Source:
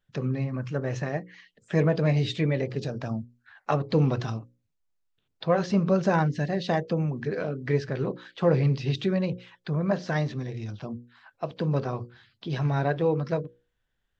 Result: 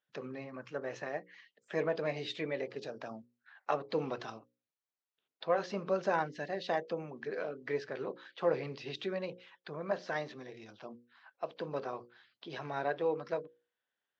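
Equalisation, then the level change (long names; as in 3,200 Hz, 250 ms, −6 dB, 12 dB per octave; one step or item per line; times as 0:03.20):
high-pass filter 410 Hz 12 dB per octave
high-frequency loss of the air 74 metres
−5.0 dB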